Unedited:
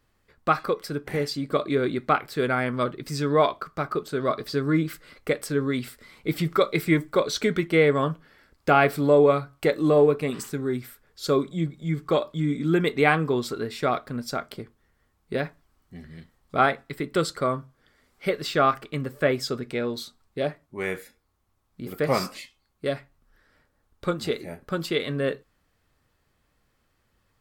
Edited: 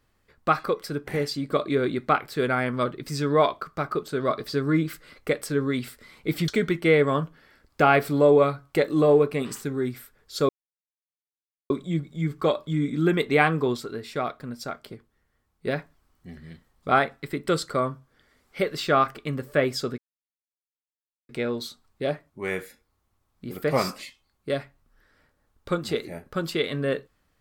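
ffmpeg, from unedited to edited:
-filter_complex "[0:a]asplit=6[s0][s1][s2][s3][s4][s5];[s0]atrim=end=6.482[s6];[s1]atrim=start=7.358:end=11.37,asetpts=PTS-STARTPTS,afade=t=out:st=4.008:d=0.004:c=hsin,apad=pad_dur=1.21[s7];[s2]atrim=start=11.37:end=13.442,asetpts=PTS-STARTPTS,afade=t=in:d=0.004:c=hsin[s8];[s3]atrim=start=13.438:end=15.332,asetpts=PTS-STARTPTS,volume=0.631[s9];[s4]atrim=start=15.328:end=19.65,asetpts=PTS-STARTPTS,afade=t=out:st=4.318:d=0.004:c=hsin,apad=pad_dur=1.31[s10];[s5]atrim=start=19.65,asetpts=PTS-STARTPTS,afade=t=in:d=0.004:c=hsin[s11];[s7][s8]concat=n=2:v=0:a=1[s12];[s6][s12]acrossfade=d=0.004:c1=hsin:c2=hsin[s13];[s13][s9]acrossfade=d=0.004:c1=hsin:c2=hsin[s14];[s10][s11]concat=n=2:v=0:a=1[s15];[s14][s15]acrossfade=d=0.004:c1=hsin:c2=hsin"

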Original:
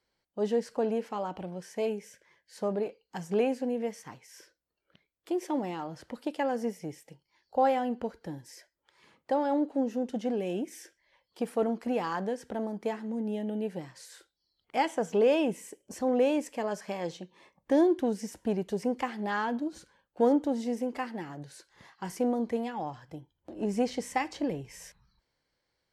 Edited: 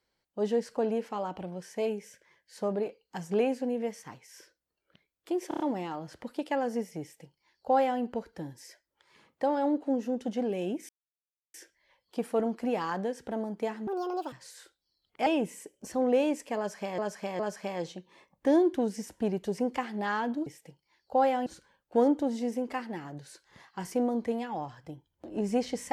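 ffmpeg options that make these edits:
-filter_complex "[0:a]asplit=13[s0][s1][s2][s3][s4][s5][s6][s7][s8][s9][s10][s11][s12];[s0]atrim=end=5.512[s13];[s1]atrim=start=5.478:end=5.512[s14];[s2]atrim=start=5.478:end=5.512[s15];[s3]atrim=start=5.478:end=5.512[s16];[s4]atrim=start=5.478:end=10.77,asetpts=PTS-STARTPTS,afade=t=out:st=5.288:d=0.004:c=hsin,apad=pad_dur=0.65[s17];[s5]atrim=start=10.77:end=13.104,asetpts=PTS-STARTPTS,afade=t=in:d=0.004:c=hsin[s18];[s6]atrim=start=13.1:end=13.87,asetpts=PTS-STARTPTS,asetrate=74970,aresample=44100[s19];[s7]atrim=start=13.866:end=14.812[s20];[s8]atrim=start=15.328:end=17.052[s21];[s9]atrim=start=16.638:end=17.052[s22];[s10]atrim=start=16.638:end=19.712[s23];[s11]atrim=start=6.888:end=7.892[s24];[s12]atrim=start=19.708[s25];[s13][s14]acrossfade=d=0.004:c1=hsin:c2=hsin[s26];[s26][s15]acrossfade=d=0.004:c1=hsin:c2=hsin[s27];[s27][s16]acrossfade=d=0.004:c1=hsin:c2=hsin[s28];[s17][s18]concat=n=2:v=0:a=1[s29];[s28][s29]acrossfade=d=0.004:c1=hsin:c2=hsin[s30];[s30][s19]acrossfade=d=0.004:c1=hsin:c2=hsin[s31];[s31][s20]acrossfade=d=0.004:c1=hsin:c2=hsin[s32];[s32][s21]acrossfade=d=0.004:c1=hsin:c2=hsin[s33];[s33][s22]acrossfade=d=0.004:c1=hsin:c2=hsin[s34];[s34][s23]acrossfade=d=0.004:c1=hsin:c2=hsin[s35];[s35][s24]acrossfade=d=0.004:c1=hsin:c2=hsin[s36];[s36][s25]acrossfade=d=0.004:c1=hsin:c2=hsin"

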